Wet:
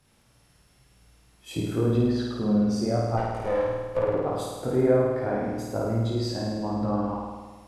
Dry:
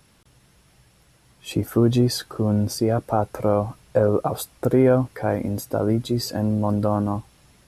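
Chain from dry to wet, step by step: 3.17–4.14 s: comb filter that takes the minimum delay 2.1 ms; chorus voices 2, 0.95 Hz, delay 21 ms, depth 4.5 ms; low-pass that closes with the level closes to 2.3 kHz, closed at -17.5 dBFS; on a send: flutter echo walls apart 9 m, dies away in 1.4 s; on the sum: trim -4.5 dB

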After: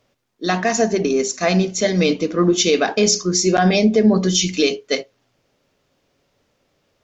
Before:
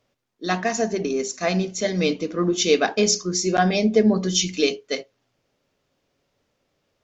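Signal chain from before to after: peak limiter -12 dBFS, peak gain reduction 7 dB; trim +6 dB

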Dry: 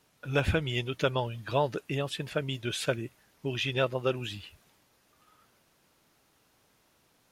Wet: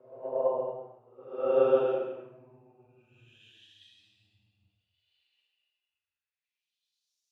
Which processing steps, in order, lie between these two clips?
Paulstretch 9.8×, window 0.10 s, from 3.91 s; band-pass sweep 650 Hz -> 5.6 kHz, 5.64–7.18 s; three bands expanded up and down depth 100%

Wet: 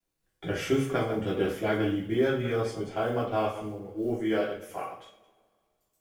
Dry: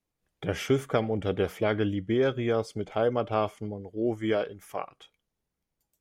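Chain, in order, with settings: chunks repeated in reverse 103 ms, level -9.5 dB; companded quantiser 8-bit; two-slope reverb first 0.38 s, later 2.1 s, from -26 dB, DRR -5.5 dB; trim -7 dB

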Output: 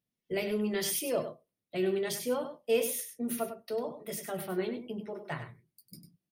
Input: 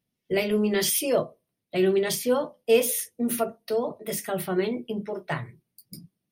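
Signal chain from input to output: delay 99 ms -9.5 dB; trim -8 dB

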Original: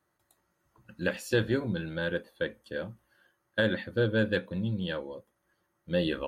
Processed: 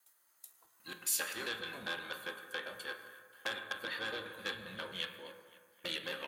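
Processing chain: slices played last to first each 133 ms, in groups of 2; tilt shelf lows -6.5 dB, about 660 Hz; band-stop 5.5 kHz, Q 8.5; compression 3:1, threshold -30 dBFS, peak gain reduction 8 dB; harmony voices -12 st -13 dB, -7 st -11 dB, -4 st -12 dB; RIAA curve recording; band-passed feedback delay 263 ms, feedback 54%, band-pass 1.7 kHz, level -17 dB; on a send at -5 dB: reverberation RT60 1.7 s, pre-delay 7 ms; on the sum: transformer saturation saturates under 2.9 kHz; trim -7 dB

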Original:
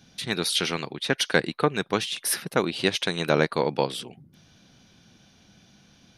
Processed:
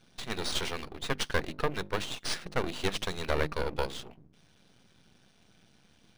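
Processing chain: hum notches 50/100/150/200/250/300/350 Hz; half-wave rectifier; decimation joined by straight lines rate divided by 3×; trim -1.5 dB

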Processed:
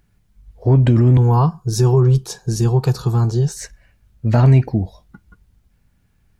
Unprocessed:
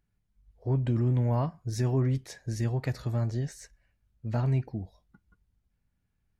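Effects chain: 1.17–3.57 s: static phaser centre 400 Hz, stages 8; loudness maximiser +21 dB; trim -4.5 dB

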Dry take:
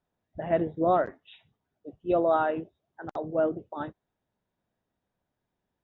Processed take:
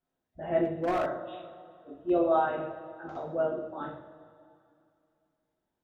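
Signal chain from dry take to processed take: two-slope reverb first 0.54 s, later 2.5 s, from -16 dB, DRR -6 dB; 0.65–2.10 s: hard clipper -15 dBFS, distortion -17 dB; trim -9 dB

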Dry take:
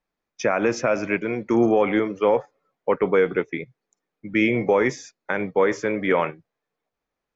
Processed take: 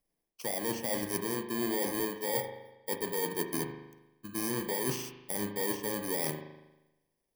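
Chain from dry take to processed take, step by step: bit-reversed sample order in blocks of 32 samples; reverse; compression 12:1, threshold -30 dBFS, peak gain reduction 16.5 dB; reverse; spring tank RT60 1 s, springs 39 ms, chirp 55 ms, DRR 5.5 dB

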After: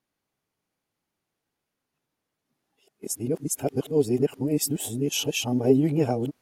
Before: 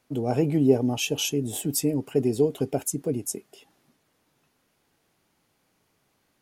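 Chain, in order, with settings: reverse the whole clip; gate -45 dBFS, range -13 dB

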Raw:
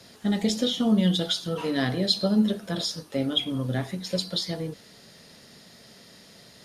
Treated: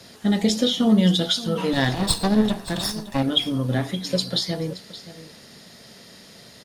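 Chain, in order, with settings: 1.73–3.23 s: comb filter that takes the minimum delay 1.1 ms; delay 573 ms -16 dB; trim +4.5 dB

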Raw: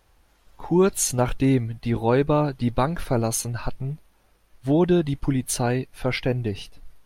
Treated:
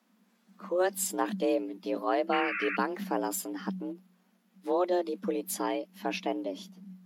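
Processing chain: painted sound noise, 2.32–2.77 s, 930–2500 Hz -25 dBFS; formant shift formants +2 st; frequency shift +180 Hz; trim -8.5 dB

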